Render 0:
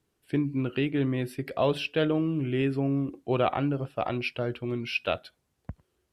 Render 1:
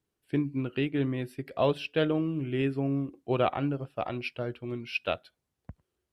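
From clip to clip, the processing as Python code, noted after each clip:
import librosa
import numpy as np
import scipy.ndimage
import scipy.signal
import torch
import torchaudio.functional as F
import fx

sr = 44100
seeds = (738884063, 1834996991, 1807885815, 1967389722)

y = fx.upward_expand(x, sr, threshold_db=-37.0, expansion=1.5)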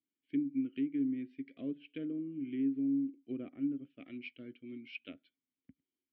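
y = fx.env_lowpass_down(x, sr, base_hz=990.0, full_db=-24.0)
y = fx.vowel_filter(y, sr, vowel='i')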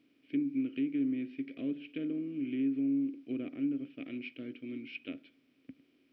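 y = fx.bin_compress(x, sr, power=0.6)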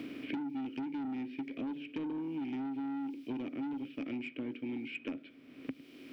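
y = 10.0 ** (-35.5 / 20.0) * np.tanh(x / 10.0 ** (-35.5 / 20.0))
y = fx.band_squash(y, sr, depth_pct=100)
y = y * 10.0 ** (1.0 / 20.0)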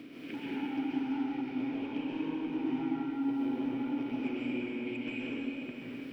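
y = fx.rev_plate(x, sr, seeds[0], rt60_s=3.9, hf_ratio=0.9, predelay_ms=115, drr_db=-9.0)
y = y * 10.0 ** (-5.0 / 20.0)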